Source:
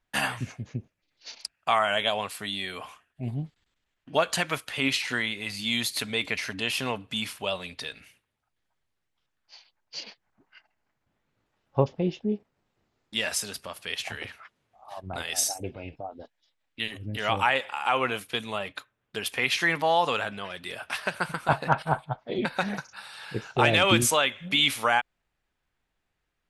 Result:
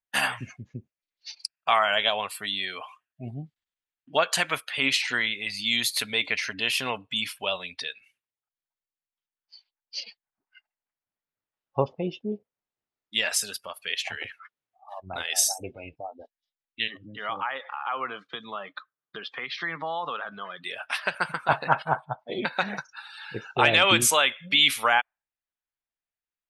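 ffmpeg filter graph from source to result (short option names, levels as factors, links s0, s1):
-filter_complex "[0:a]asettb=1/sr,asplit=3[s0][s1][s2];[s0]atrim=end=16.884[s3];[s1]atrim=start=16.88:end=20.64,asetpts=PTS-STARTPTS,afade=t=in:d=0.004:c=qsin,afade=t=out:st=3.756:d=0.004:c=qsin,acompressor=threshold=0.0158:ratio=2:attack=3.2:release=140:knee=1:detection=peak,highpass=f=120:w=0.5412,highpass=f=120:w=1.3066,equalizer=f=160:t=q:w=4:g=6,equalizer=f=310:t=q:w=4:g=3,equalizer=f=1200:t=q:w=4:g=7,equalizer=f=2600:t=q:w=4:g=-8,lowpass=f=5200:w=0.5412,lowpass=f=5200:w=1.3066[s4];[s2]atrim=start=20.636[s5];[s3][s4]acrossfade=d=0.004:c1=hsin:c2=qsin[s6];[s6][s5]acrossfade=d=0.004:c1=qsin:c2=hsin,lowshelf=f=470:g=-9.5,afftdn=nr=20:nf=-45,volume=1.5"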